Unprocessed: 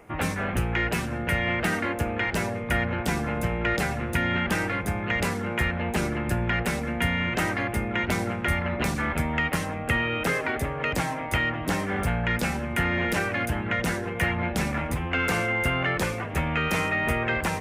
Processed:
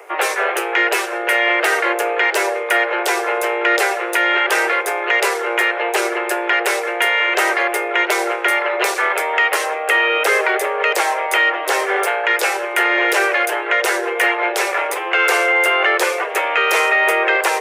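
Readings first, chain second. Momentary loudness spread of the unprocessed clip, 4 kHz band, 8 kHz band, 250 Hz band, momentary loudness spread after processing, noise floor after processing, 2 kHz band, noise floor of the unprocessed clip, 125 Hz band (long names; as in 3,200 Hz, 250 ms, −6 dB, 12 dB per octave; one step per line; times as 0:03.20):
3 LU, +11.5 dB, +11.5 dB, −2.0 dB, 5 LU, −24 dBFS, +11.5 dB, −32 dBFS, below −40 dB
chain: Butterworth high-pass 360 Hz 96 dB per octave
in parallel at −1 dB: brickwall limiter −20.5 dBFS, peak gain reduction 7 dB
on the sum: level +7 dB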